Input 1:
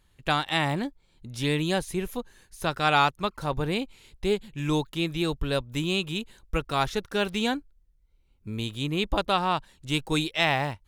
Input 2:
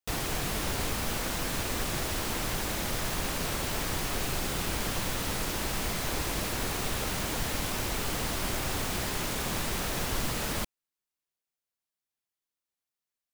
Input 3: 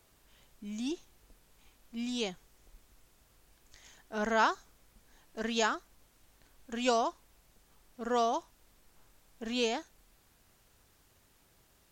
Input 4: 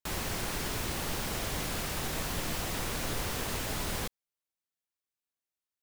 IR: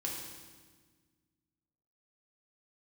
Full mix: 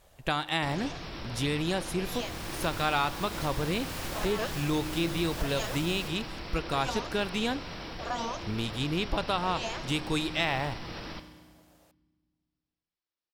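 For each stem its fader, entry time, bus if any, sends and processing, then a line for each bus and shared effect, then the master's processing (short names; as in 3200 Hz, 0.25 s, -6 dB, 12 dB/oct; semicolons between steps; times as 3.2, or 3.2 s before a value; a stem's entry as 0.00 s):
+1.0 dB, 0.00 s, bus A, send -21.5 dB, dry
-5.0 dB, 0.55 s, no bus, send -4.5 dB, Chebyshev low-pass 5700 Hz, order 10; limiter -30.5 dBFS, peak gain reduction 10.5 dB
+0.5 dB, 0.00 s, bus A, no send, spectral gate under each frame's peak -10 dB weak; bell 610 Hz +15 dB 1.1 oct
-13.0 dB, 2.00 s, bus A, send -13 dB, AGC gain up to 8 dB
bus A: 0.0 dB, compressor 2.5:1, threshold -29 dBFS, peak gain reduction 9.5 dB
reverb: on, RT60 1.5 s, pre-delay 3 ms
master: dry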